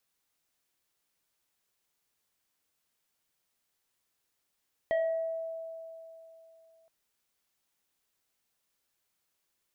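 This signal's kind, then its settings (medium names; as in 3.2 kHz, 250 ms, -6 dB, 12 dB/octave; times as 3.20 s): FM tone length 1.97 s, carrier 654 Hz, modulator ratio 1.93, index 0.63, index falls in 0.81 s exponential, decay 3.12 s, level -24 dB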